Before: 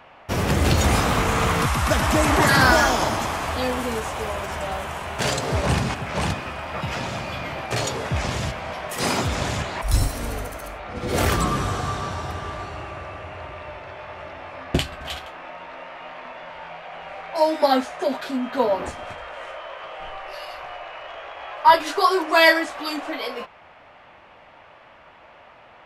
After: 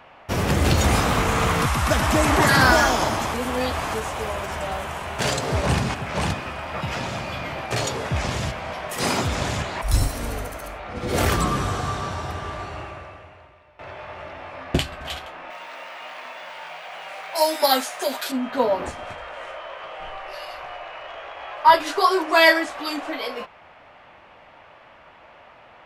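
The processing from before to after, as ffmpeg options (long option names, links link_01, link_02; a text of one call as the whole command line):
ffmpeg -i in.wav -filter_complex "[0:a]asettb=1/sr,asplit=3[link_01][link_02][link_03];[link_01]atrim=end=15.504[link_04];[link_02]atrim=start=15.5:end=18.32,asetpts=PTS-STARTPTS,afade=type=in:duration=0.004:curve=qsin,afade=type=out:start_time=2.816:duration=0.004:curve=qsin,aemphasis=mode=production:type=riaa[link_05];[link_03]atrim=start=18.316[link_06];[link_04][link_05]acrossfade=duration=0.004:curve1=hsin:curve2=qsin[link_07];[link_07][link_06]acrossfade=duration=0.004:curve1=qsin:curve2=hsin,asplit=4[link_08][link_09][link_10][link_11];[link_08]atrim=end=3.342[link_12];[link_09]atrim=start=3.338:end=3.942,asetpts=PTS-STARTPTS,areverse[link_13];[link_10]atrim=start=3.938:end=13.79,asetpts=PTS-STARTPTS,afade=type=out:start_time=8.862:duration=0.99:curve=qua:silence=0.105925[link_14];[link_11]atrim=start=13.79,asetpts=PTS-STARTPTS,afade=type=in:duration=0.004:curve=hsin:silence=0.105925[link_15];[link_12][link_13]acrossfade=duration=0.004:curve1=hsin:curve2=hsin[link_16];[link_14][link_15]concat=n=2:v=0:a=1[link_17];[link_16][link_17]acrossfade=duration=0.004:curve1=hsin:curve2=hsin" out.wav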